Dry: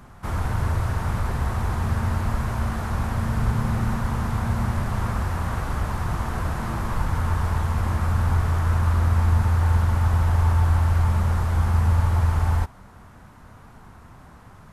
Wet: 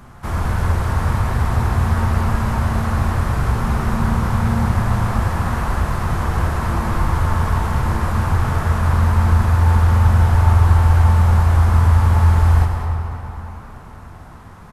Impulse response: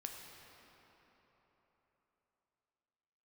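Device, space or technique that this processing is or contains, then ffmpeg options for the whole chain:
cave: -filter_complex "[0:a]aecho=1:1:207:0.299[a];[1:a]atrim=start_sample=2205[b];[a][b]afir=irnorm=-1:irlink=0,volume=8.5dB"

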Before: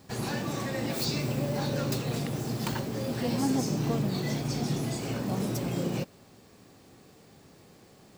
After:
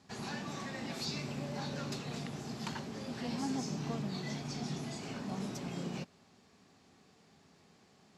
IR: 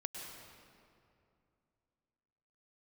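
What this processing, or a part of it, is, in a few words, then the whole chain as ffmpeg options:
car door speaker: -af "highpass=85,equalizer=f=120:t=q:w=4:g=-10,equalizer=f=320:t=q:w=4:g=-7,equalizer=f=520:t=q:w=4:g=-8,equalizer=f=8.7k:t=q:w=4:g=-9,lowpass=f=9.4k:w=0.5412,lowpass=f=9.4k:w=1.3066,volume=-6dB"

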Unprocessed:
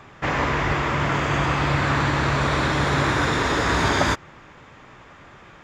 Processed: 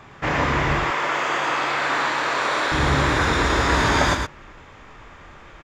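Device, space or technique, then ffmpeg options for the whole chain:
slapback doubling: -filter_complex "[0:a]asettb=1/sr,asplit=3[a][b][c];[a]atrim=end=0.794[d];[b]atrim=start=0.79:end=2.72,asetpts=PTS-STARTPTS,afade=t=in:d=0.004:c=qsin,afade=t=out:st=1.926:d=0.004:c=qsin,highpass=470[e];[c]atrim=start=2.716[f];[d][e]acrossfade=d=0.004:c1=hsin:c2=qsin[g];[g][f]acrossfade=d=0.004:c1=qsin:c2=hsin,asplit=3[h][i][j];[i]adelay=26,volume=-7dB[k];[j]adelay=113,volume=-5dB[l];[h][k][l]amix=inputs=3:normalize=0,asubboost=boost=4:cutoff=64"

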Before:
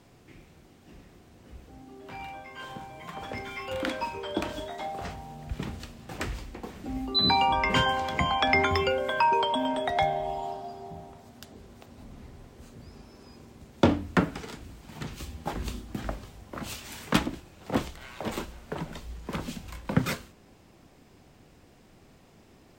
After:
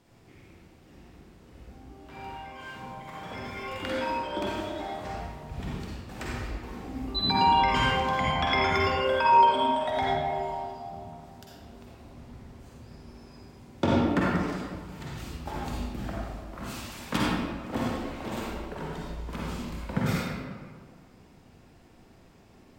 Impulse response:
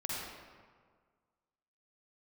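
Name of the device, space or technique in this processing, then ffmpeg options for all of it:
stairwell: -filter_complex "[1:a]atrim=start_sample=2205[a];[0:a][a]afir=irnorm=-1:irlink=0,volume=-3dB"

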